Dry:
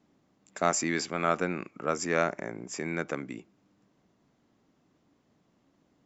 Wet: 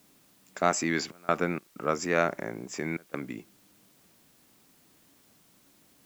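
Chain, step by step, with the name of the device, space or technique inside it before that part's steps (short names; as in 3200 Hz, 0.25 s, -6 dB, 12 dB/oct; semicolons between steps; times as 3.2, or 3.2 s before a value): worn cassette (LPF 6500 Hz; wow and flutter; level dips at 1.12/1.59/2.97, 0.166 s -25 dB; white noise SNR 30 dB); gain +1.5 dB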